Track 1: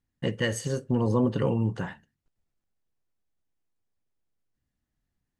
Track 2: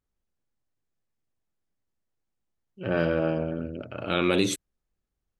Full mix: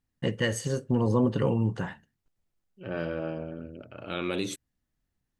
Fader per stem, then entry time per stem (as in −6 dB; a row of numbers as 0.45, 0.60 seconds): 0.0, −7.5 decibels; 0.00, 0.00 seconds